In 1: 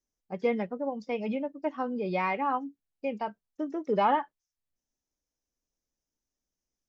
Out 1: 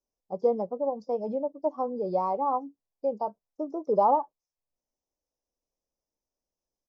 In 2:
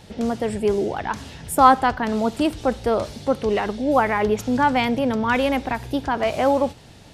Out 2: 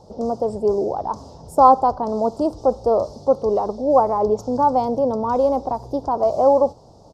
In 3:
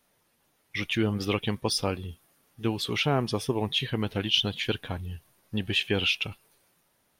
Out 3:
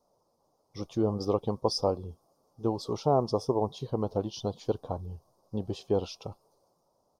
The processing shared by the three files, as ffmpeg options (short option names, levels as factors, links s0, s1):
-af "firequalizer=gain_entry='entry(250,0);entry(530,9);entry(1100,4);entry(1700,-27);entry(2500,-27);entry(5000,1);entry(10000,-13)':delay=0.05:min_phase=1,volume=0.668"